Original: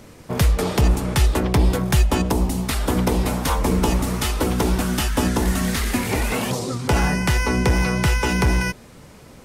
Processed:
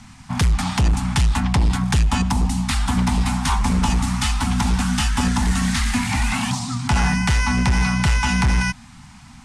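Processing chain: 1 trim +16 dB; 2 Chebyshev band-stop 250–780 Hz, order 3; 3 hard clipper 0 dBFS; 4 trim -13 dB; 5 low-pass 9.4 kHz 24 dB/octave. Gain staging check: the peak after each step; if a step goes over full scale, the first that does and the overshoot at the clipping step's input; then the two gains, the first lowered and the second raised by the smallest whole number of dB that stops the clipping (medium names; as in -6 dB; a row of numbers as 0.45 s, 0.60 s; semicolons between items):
+10.0 dBFS, +9.5 dBFS, 0.0 dBFS, -13.0 dBFS, -10.5 dBFS; step 1, 9.5 dB; step 1 +6 dB, step 4 -3 dB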